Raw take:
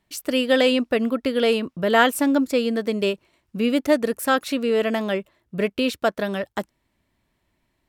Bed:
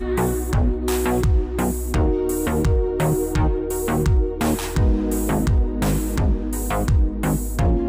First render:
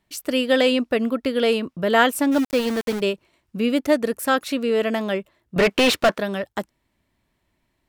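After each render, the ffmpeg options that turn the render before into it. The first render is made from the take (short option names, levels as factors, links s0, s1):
-filter_complex "[0:a]asplit=3[s0][s1][s2];[s0]afade=t=out:st=2.31:d=0.02[s3];[s1]aeval=exprs='val(0)*gte(abs(val(0)),0.0501)':c=same,afade=t=in:st=2.31:d=0.02,afade=t=out:st=2.99:d=0.02[s4];[s2]afade=t=in:st=2.99:d=0.02[s5];[s3][s4][s5]amix=inputs=3:normalize=0,asettb=1/sr,asplit=3[s6][s7][s8];[s6]atrim=end=5.564[s9];[s7]atrim=start=5.56:end=6.18,asetpts=PTS-STARTPTS,afade=t=in:d=0.004:c=qsin,afade=t=out:st=0.616:d=0.004:c=qsin,asplit=2[s10][s11];[s11]highpass=f=720:p=1,volume=22.4,asoftclip=type=tanh:threshold=0.376[s12];[s10][s12]amix=inputs=2:normalize=0,lowpass=f=3600:p=1,volume=0.501[s13];[s8]atrim=start=6.176[s14];[s9][s13]acrossfade=d=0.004:c1=hsin:c2=qsin[s15];[s15][s14]acrossfade=d=0.004:c1=qsin:c2=hsin"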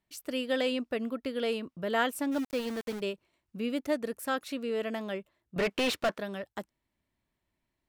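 -af "volume=0.266"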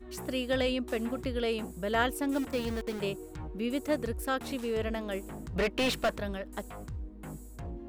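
-filter_complex "[1:a]volume=0.0794[s0];[0:a][s0]amix=inputs=2:normalize=0"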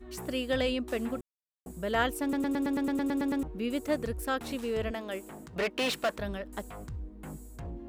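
-filter_complex "[0:a]asettb=1/sr,asplit=3[s0][s1][s2];[s0]atrim=end=4.914[s3];[s1]atrim=start=4.91:end=6.19,asetpts=PTS-STARTPTS,afade=t=in:d=0.004:c=qsin,afade=t=out:st=1.276:d=0.004:c=qsin,highpass=f=290:p=1[s4];[s2]atrim=start=6.186[s5];[s3][s4]acrossfade=d=0.004:c1=hsin:c2=qsin[s6];[s6][s5]acrossfade=d=0.004:c1=qsin:c2=hsin,asplit=14[s7][s8][s9][s10][s11][s12][s13][s14][s15][s16][s17][s18][s19][s20];[s7]atrim=end=1.21,asetpts=PTS-STARTPTS,afade=t=out:st=1.206:d=0.004:c=hsin[s21];[s8]atrim=start=1.21:end=1.66,asetpts=PTS-STARTPTS,volume=0[s22];[s9]atrim=start=1.66:end=2.332,asetpts=PTS-STARTPTS,afade=t=in:d=0.004:c=hsin[s23];[s10]atrim=start=2.218:end=2.332[s24];[s11]atrim=start=2.218:end=2.332[s25];[s12]atrim=start=2.218:end=2.332[s26];[s13]atrim=start=2.218:end=2.332[s27];[s14]atrim=start=2.218:end=2.332[s28];[s15]atrim=start=2.218:end=2.332[s29];[s16]atrim=start=2.218:end=2.332[s30];[s17]atrim=start=2.218:end=2.332[s31];[s18]atrim=start=2.218:end=2.332[s32];[s19]atrim=start=2.218:end=2.332[s33];[s20]atrim=start=3.428[s34];[s21][s22][s23]concat=n=3:v=0:a=1[s35];[s35][s24]acrossfade=d=0.004:c1=hsin:c2=hsin[s36];[s36][s25]acrossfade=d=0.004:c1=hsin:c2=hsin[s37];[s37][s26]acrossfade=d=0.004:c1=hsin:c2=hsin[s38];[s38][s27]acrossfade=d=0.004:c1=hsin:c2=hsin[s39];[s39][s28]acrossfade=d=0.004:c1=hsin:c2=hsin[s40];[s40][s29]acrossfade=d=0.004:c1=hsin:c2=hsin[s41];[s41][s30]acrossfade=d=0.004:c1=hsin:c2=hsin[s42];[s42][s31]acrossfade=d=0.004:c1=hsin:c2=hsin[s43];[s43][s32]acrossfade=d=0.004:c1=hsin:c2=hsin[s44];[s44][s33]acrossfade=d=0.004:c1=hsin:c2=hsin[s45];[s45][s34]acrossfade=d=0.004:c1=hsin:c2=hsin"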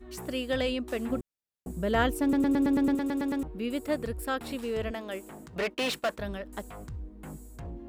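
-filter_complex "[0:a]asettb=1/sr,asplit=3[s0][s1][s2];[s0]atrim=end=1.094[s3];[s1]atrim=start=1.09:end=2.95,asetpts=PTS-STARTPTS,afade=t=in:d=0.004:c=qsin,afade=t=out:st=1.856:d=0.004:c=qsin,lowshelf=f=400:g=8[s4];[s2]atrim=start=2.946[s5];[s3][s4]acrossfade=d=0.004:c1=hsin:c2=qsin[s6];[s6][s5]acrossfade=d=0.004:c1=qsin:c2=hsin,asettb=1/sr,asplit=3[s7][s8][s9];[s7]atrim=end=3.454[s10];[s8]atrim=start=3.45:end=4.63,asetpts=PTS-STARTPTS,afade=t=in:d=0.004:c=qsin,afade=t=out:st=1.176:d=0.004:c=qsin,bandreject=f=6200:w=5.9[s11];[s9]atrim=start=4.626[s12];[s10][s11]acrossfade=d=0.004:c1=hsin:c2=qsin[s13];[s13][s12]acrossfade=d=0.004:c1=qsin:c2=hsin,asplit=3[s14][s15][s16];[s14]afade=t=out:st=5.73:d=0.02[s17];[s15]agate=range=0.0224:threshold=0.01:ratio=3:release=100:detection=peak,afade=t=in:st=5.73:d=0.02,afade=t=out:st=6.17:d=0.02[s18];[s16]afade=t=in:st=6.17:d=0.02[s19];[s17][s18][s19]amix=inputs=3:normalize=0"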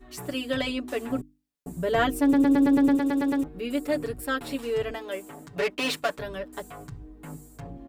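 -af "bandreject=f=50:t=h:w=6,bandreject=f=100:t=h:w=6,bandreject=f=150:t=h:w=6,bandreject=f=200:t=h:w=6,bandreject=f=250:t=h:w=6,bandreject=f=300:t=h:w=6,aecho=1:1:7:1"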